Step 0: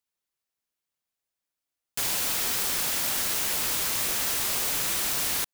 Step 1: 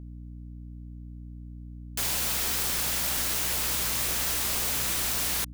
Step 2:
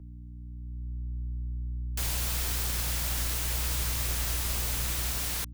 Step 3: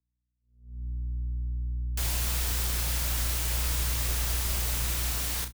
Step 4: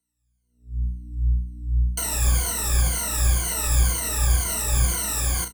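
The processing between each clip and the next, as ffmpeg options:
-af "aeval=exprs='val(0)+0.0112*(sin(2*PI*60*n/s)+sin(2*PI*2*60*n/s)/2+sin(2*PI*3*60*n/s)/3+sin(2*PI*4*60*n/s)/4+sin(2*PI*5*60*n/s)/5)':c=same,volume=-1dB"
-filter_complex "[0:a]equalizer=f=82:t=o:w=1.5:g=3,acrossover=split=100|1800|4600[a][b][c][d];[a]dynaudnorm=f=300:g=5:m=12.5dB[e];[e][b][c][d]amix=inputs=4:normalize=0,volume=-4.5dB"
-filter_complex "[0:a]asplit=2[a][b];[b]aecho=0:1:35|80:0.398|0.168[c];[a][c]amix=inputs=2:normalize=0,agate=range=-41dB:threshold=-35dB:ratio=16:detection=peak"
-filter_complex "[0:a]afftfilt=real='re*pow(10,21/40*sin(2*PI*(1.9*log(max(b,1)*sr/1024/100)/log(2)-(-2)*(pts-256)/sr)))':imag='im*pow(10,21/40*sin(2*PI*(1.9*log(max(b,1)*sr/1024/100)/log(2)-(-2)*(pts-256)/sr)))':win_size=1024:overlap=0.75,acrossover=split=340|1800[a][b][c];[c]alimiter=level_in=2dB:limit=-24dB:level=0:latency=1:release=325,volume=-2dB[d];[a][b][d]amix=inputs=3:normalize=0,equalizer=f=8.5k:t=o:w=0.82:g=12,volume=3dB"

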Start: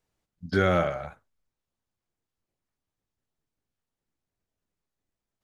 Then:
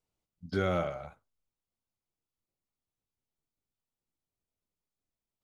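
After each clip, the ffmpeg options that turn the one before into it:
-af "equalizer=f=1.7k:w=4.8:g=-9,volume=-6.5dB"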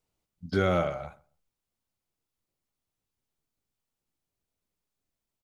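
-filter_complex "[0:a]asplit=2[a][b];[b]adelay=133,lowpass=f=1.2k:p=1,volume=-22dB,asplit=2[c][d];[d]adelay=133,lowpass=f=1.2k:p=1,volume=0.21[e];[a][c][e]amix=inputs=3:normalize=0,volume=4.5dB"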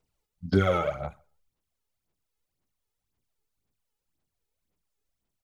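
-af "aphaser=in_gain=1:out_gain=1:delay=2.4:decay=0.64:speed=1.9:type=sinusoidal,volume=-1.5dB"

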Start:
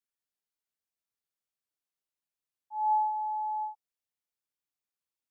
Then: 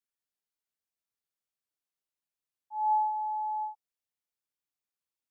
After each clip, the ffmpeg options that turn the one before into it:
-af anull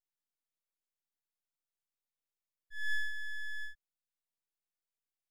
-af "aeval=exprs='abs(val(0))':c=same,volume=-3.5dB"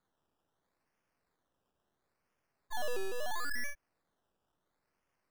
-af "acompressor=threshold=-42dB:ratio=5,acrusher=samples=16:mix=1:aa=0.000001:lfo=1:lforange=9.6:lforate=0.74,volume=10.5dB"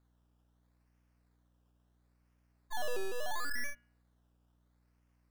-af "bandreject=f=119.8:t=h:w=4,bandreject=f=239.6:t=h:w=4,bandreject=f=359.4:t=h:w=4,bandreject=f=479.2:t=h:w=4,bandreject=f=599:t=h:w=4,bandreject=f=718.8:t=h:w=4,bandreject=f=838.6:t=h:w=4,bandreject=f=958.4:t=h:w=4,bandreject=f=1.0782k:t=h:w=4,bandreject=f=1.198k:t=h:w=4,bandreject=f=1.3178k:t=h:w=4,bandreject=f=1.4376k:t=h:w=4,bandreject=f=1.5574k:t=h:w=4,bandreject=f=1.6772k:t=h:w=4,bandreject=f=1.797k:t=h:w=4,bandreject=f=1.9168k:t=h:w=4,bandreject=f=2.0366k:t=h:w=4,bandreject=f=2.1564k:t=h:w=4,bandreject=f=2.2762k:t=h:w=4,bandreject=f=2.396k:t=h:w=4,bandreject=f=2.5158k:t=h:w=4,bandreject=f=2.6356k:t=h:w=4,bandreject=f=2.7554k:t=h:w=4,bandreject=f=2.8752k:t=h:w=4,bandreject=f=2.995k:t=h:w=4,bandreject=f=3.1148k:t=h:w=4,bandreject=f=3.2346k:t=h:w=4,bandreject=f=3.3544k:t=h:w=4,aeval=exprs='val(0)+0.000282*(sin(2*PI*60*n/s)+sin(2*PI*2*60*n/s)/2+sin(2*PI*3*60*n/s)/3+sin(2*PI*4*60*n/s)/4+sin(2*PI*5*60*n/s)/5)':c=same"

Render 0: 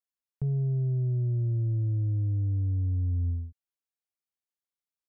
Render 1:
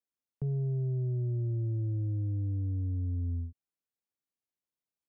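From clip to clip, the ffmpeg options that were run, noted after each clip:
-filter_complex "[0:a]equalizer=f=220:w=0.38:g=10.5,acrossover=split=330[a][b];[a]alimiter=limit=-22dB:level=0:latency=1:release=118[c];[c][b]amix=inputs=2:normalize=0,volume=-6dB"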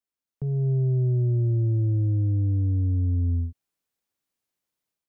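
-af "dynaudnorm=f=350:g=3:m=9dB"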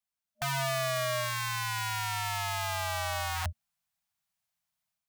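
-af "aeval=exprs='(mod(16.8*val(0)+1,2)-1)/16.8':c=same,afftfilt=real='re*(1-between(b*sr/4096,220,610))':imag='im*(1-between(b*sr/4096,220,610))':win_size=4096:overlap=0.75"

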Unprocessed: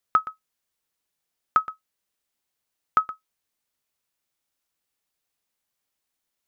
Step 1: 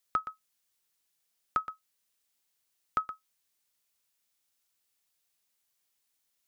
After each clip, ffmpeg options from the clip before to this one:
-filter_complex "[0:a]highshelf=f=2.2k:g=8.5,acrossover=split=610[a][b];[b]alimiter=limit=-15dB:level=0:latency=1:release=288[c];[a][c]amix=inputs=2:normalize=0,volume=-4dB"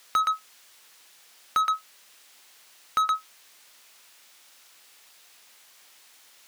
-filter_complex "[0:a]asplit=2[a][b];[b]highpass=f=720:p=1,volume=37dB,asoftclip=type=tanh:threshold=-15dB[c];[a][c]amix=inputs=2:normalize=0,lowpass=f=3.2k:p=1,volume=-6dB"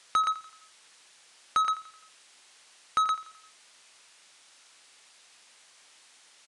-af "aecho=1:1:86|172|258|344:0.178|0.0854|0.041|0.0197,aresample=22050,aresample=44100,volume=-1.5dB"

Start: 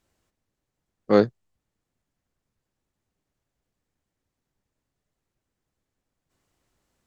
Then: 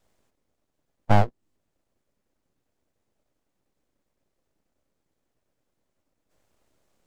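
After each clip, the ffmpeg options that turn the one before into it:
-filter_complex "[0:a]equalizer=f=290:t=o:w=0.93:g=12,acrossover=split=420|1300[a][b][c];[a]acompressor=threshold=-19dB:ratio=4[d];[b]acompressor=threshold=-21dB:ratio=4[e];[c]acompressor=threshold=-44dB:ratio=4[f];[d][e][f]amix=inputs=3:normalize=0,aeval=exprs='abs(val(0))':c=same,volume=2dB"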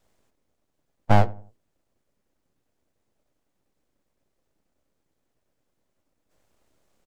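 -filter_complex "[0:a]asplit=2[a][b];[b]adelay=89,lowpass=f=890:p=1,volume=-18.5dB,asplit=2[c][d];[d]adelay=89,lowpass=f=890:p=1,volume=0.4,asplit=2[e][f];[f]adelay=89,lowpass=f=890:p=1,volume=0.4[g];[a][c][e][g]amix=inputs=4:normalize=0,volume=1dB"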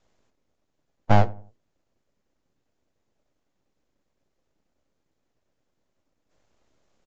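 -ar 16000 -c:a aac -b:a 64k

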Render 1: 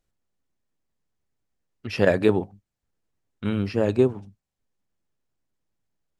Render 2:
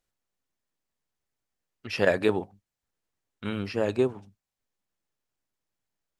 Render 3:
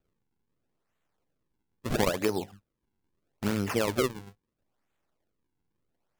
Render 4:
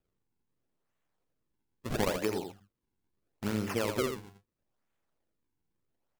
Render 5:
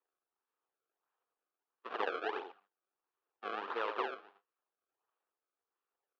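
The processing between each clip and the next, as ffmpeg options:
-af "lowshelf=f=410:g=-9"
-af "acompressor=threshold=-29dB:ratio=8,acrusher=samples=41:mix=1:aa=0.000001:lfo=1:lforange=65.6:lforate=0.76,volume=6dB"
-af "aecho=1:1:83:0.447,volume=-4.5dB"
-af "acrusher=samples=27:mix=1:aa=0.000001:lfo=1:lforange=43.2:lforate=1.5,highpass=f=470:w=0.5412,highpass=f=470:w=1.3066,equalizer=f=590:t=q:w=4:g=-9,equalizer=f=1.2k:t=q:w=4:g=5,equalizer=f=2.1k:t=q:w=4:g=-8,lowpass=f=2.9k:w=0.5412,lowpass=f=2.9k:w=1.3066"

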